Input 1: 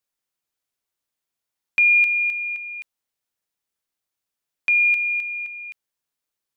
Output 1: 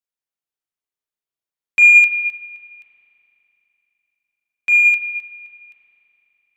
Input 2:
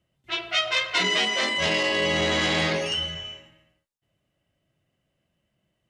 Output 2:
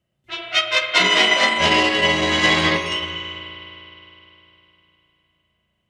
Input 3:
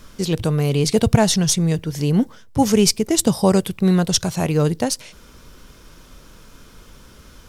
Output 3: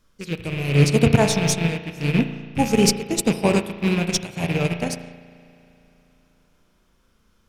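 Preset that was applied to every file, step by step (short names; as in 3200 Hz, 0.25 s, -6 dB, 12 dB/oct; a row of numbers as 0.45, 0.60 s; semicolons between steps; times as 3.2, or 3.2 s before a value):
rattling part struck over -22 dBFS, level -14 dBFS; in parallel at -9.5 dB: hard clip -16.5 dBFS; on the sum: spring tank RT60 3.4 s, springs 35 ms, chirp 75 ms, DRR 0.5 dB; upward expander 2.5:1, over -23 dBFS; normalise peaks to -3 dBFS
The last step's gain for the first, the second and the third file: +5.5, +5.0, -1.5 dB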